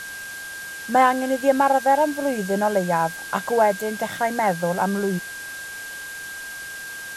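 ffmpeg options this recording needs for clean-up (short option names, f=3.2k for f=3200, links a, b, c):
-af "bandreject=f=1.6k:w=30,afftdn=nr=30:nf=-35"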